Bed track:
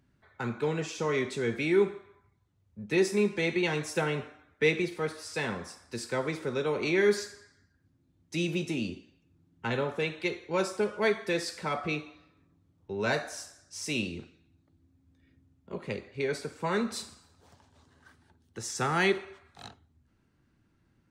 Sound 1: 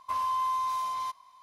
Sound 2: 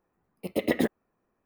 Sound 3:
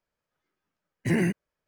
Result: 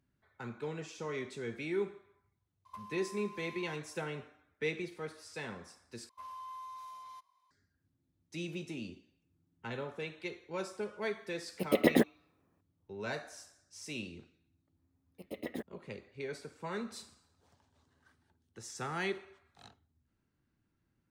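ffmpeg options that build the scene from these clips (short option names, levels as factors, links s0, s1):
-filter_complex "[1:a]asplit=2[s0][s1];[2:a]asplit=2[s2][s3];[0:a]volume=0.316[s4];[s0]acompressor=threshold=0.00708:ratio=10:attack=55:release=673:knee=1:detection=peak[s5];[s2]highpass=89[s6];[s4]asplit=2[s7][s8];[s7]atrim=end=6.094[s9];[s1]atrim=end=1.42,asetpts=PTS-STARTPTS,volume=0.141[s10];[s8]atrim=start=7.506[s11];[s5]atrim=end=1.42,asetpts=PTS-STARTPTS,volume=0.422,afade=t=in:d=0.004:c=hsin,afade=t=out:st=1.416:d=0.004:c=hsin,adelay=2650[s12];[s6]atrim=end=1.45,asetpts=PTS-STARTPTS,volume=0.944,afade=t=in:d=0.004:c=hsin,afade=t=out:st=1.446:d=0.004:c=hsin,adelay=11160[s13];[s3]atrim=end=1.45,asetpts=PTS-STARTPTS,volume=0.168,afade=t=in:d=0.004:c=hsin,afade=t=out:st=1.446:d=0.004:c=hsin,adelay=14750[s14];[s9][s10]acrossfade=d=0.004:c1=hsin:c2=hsin[s15];[s15][s11]acrossfade=d=0.004:c1=hsin:c2=hsin[s16];[s16][s12][s13][s14]amix=inputs=4:normalize=0"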